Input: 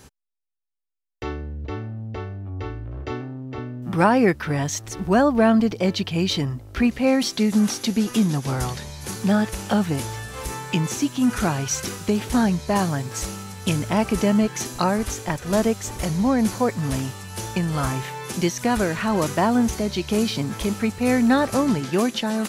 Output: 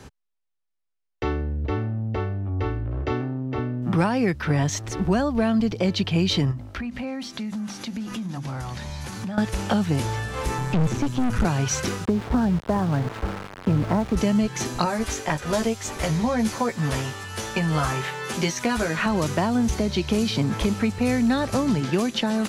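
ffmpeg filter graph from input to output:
-filter_complex "[0:a]asettb=1/sr,asplit=3[a][b][c];[a]atrim=end=6.514[d];[b]atrim=start=6.51:end=9.38,asetpts=PTS-STARTPTS,afade=t=in:d=0.004:c=qsin,afade=t=out:st=2.866:d=0.004:c=qsin,equalizer=f=430:t=o:w=0.4:g=-11,bandreject=f=50:t=h:w=6,bandreject=f=100:t=h:w=6,bandreject=f=150:t=h:w=6,bandreject=f=200:t=h:w=6,bandreject=f=250:t=h:w=6,bandreject=f=300:t=h:w=6,bandreject=f=350:t=h:w=6,acompressor=threshold=-32dB:ratio=12:attack=3.2:release=140:knee=1:detection=peak[e];[c]atrim=start=9.376[f];[d][e]acrossfade=d=0.004:c1=hsin:c2=qsin[g];[g][f]acrossfade=d=0.004:c1=qsin:c2=hsin,asettb=1/sr,asplit=3[h][i][j];[h]atrim=end=10.584[k];[i]atrim=start=10.58:end=11.45,asetpts=PTS-STARTPTS,afade=t=in:d=0.004:c=qsin,afade=t=out:st=0.866:d=0.004:c=qsin,acrossover=split=3000[l][m];[m]acompressor=threshold=-46dB:ratio=4:attack=1:release=60[n];[l][n]amix=inputs=2:normalize=0,bass=f=250:g=11,treble=f=4k:g=10,aeval=exprs='(tanh(12.6*val(0)+0.6)-tanh(0.6))/12.6':c=same[o];[j]atrim=start=11.446[p];[k][o]acrossfade=d=0.004:c1=hsin:c2=qsin[q];[q][p]acrossfade=d=0.004:c1=qsin:c2=hsin,asettb=1/sr,asplit=3[r][s][t];[r]atrim=end=12.054[u];[s]atrim=start=12.05:end=14.17,asetpts=PTS-STARTPTS,afade=t=in:d=0.004:c=qsin,afade=t=out:st=2.116:d=0.004:c=qsin,lowpass=f=1.6k:w=0.5412,lowpass=f=1.6k:w=1.3066,aeval=exprs='val(0)*gte(abs(val(0)),0.0266)':c=same[v];[t]atrim=start=14.166[w];[u][v]acrossfade=d=0.004:c1=hsin:c2=qsin[x];[x][w]acrossfade=d=0.004:c1=qsin:c2=hsin,asettb=1/sr,asplit=3[y][z][aa];[y]atrim=end=14.854[ab];[z]atrim=start=14.85:end=19.06,asetpts=PTS-STARTPTS,afade=t=in:d=0.004:c=qsin,afade=t=out:st=4.206:d=0.004:c=qsin,lowshelf=f=380:g=-8,asplit=2[ac][ad];[ad]adelay=13,volume=-3.5dB[ae];[ac][ae]amix=inputs=2:normalize=0,atrim=end_sample=185661[af];[aa]atrim=start=19.056[ag];[ab][af]acrossfade=d=0.004:c1=hsin:c2=qsin[ah];[ah][ag]acrossfade=d=0.004:c1=qsin:c2=hsin,aemphasis=mode=reproduction:type=50kf,acrossover=split=140|3000[ai][aj][ak];[aj]acompressor=threshold=-26dB:ratio=6[al];[ai][al][ak]amix=inputs=3:normalize=0,volume=5dB"

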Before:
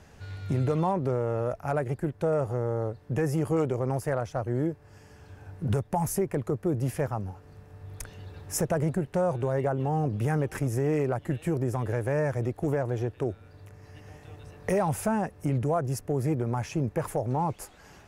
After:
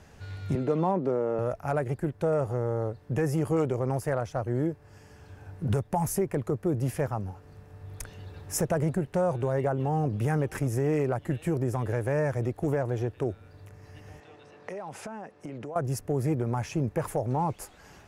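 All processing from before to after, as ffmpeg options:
-filter_complex "[0:a]asettb=1/sr,asplit=3[a][b][c];[a]atrim=end=0.554[d];[b]atrim=start=0.55:end=1.39,asetpts=PTS-STARTPTS,afade=t=in:d=0.004:c=qsin,afade=t=out:st=0.836:d=0.004:c=qsin,highpass=f=180:w=0.5412,highpass=f=180:w=1.3066,tiltshelf=f=780:g=3.5,adynamicsmooth=sensitivity=6:basefreq=7.6k[e];[c]atrim=start=1.386[f];[d][e]acrossfade=d=0.004:c1=hsin:c2=qsin[g];[g][f]acrossfade=d=0.004:c1=qsin:c2=hsin,asettb=1/sr,asplit=3[h][i][j];[h]atrim=end=14.204[k];[i]atrim=start=14.2:end=15.76,asetpts=PTS-STARTPTS,afade=t=in:d=0.004:c=qsin,afade=t=out:st=1.556:d=0.004:c=qsin,highpass=250,lowpass=5.5k,acompressor=threshold=-34dB:ratio=10:attack=3.2:release=140:knee=1:detection=peak[l];[j]atrim=start=15.756[m];[k][l]acrossfade=d=0.004:c1=hsin:c2=qsin[n];[n][m]acrossfade=d=0.004:c1=qsin:c2=hsin"

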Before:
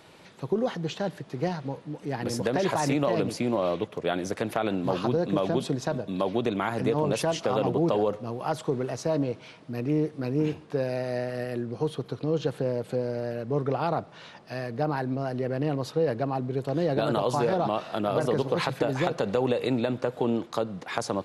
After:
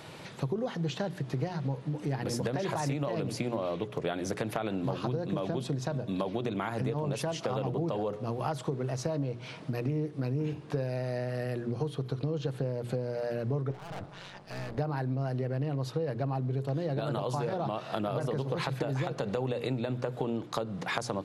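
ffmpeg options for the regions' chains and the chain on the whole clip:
-filter_complex "[0:a]asettb=1/sr,asplit=3[a][b][c];[a]atrim=end=13.714[d];[b]atrim=start=13.71:end=14.78,asetpts=PTS-STARTPTS,afade=t=in:d=0.004:c=qsin,afade=t=out:st=1.066:d=0.004:c=qsin,aeval=exprs='(tanh(100*val(0)+0.5)-tanh(0.5))/100':c=same,tremolo=f=190:d=0.788[e];[c]atrim=start=14.776[f];[d][e]acrossfade=d=0.004:c1=hsin:c2=qsin[g];[g][f]acrossfade=d=0.004:c1=qsin:c2=hsin,equalizer=f=130:w=2.8:g=9,bandreject=f=60:t=h:w=6,bandreject=f=120:t=h:w=6,bandreject=f=180:t=h:w=6,bandreject=f=240:t=h:w=6,bandreject=f=300:t=h:w=6,bandreject=f=360:t=h:w=6,bandreject=f=420:t=h:w=6,acompressor=threshold=-35dB:ratio=6,volume=5.5dB"

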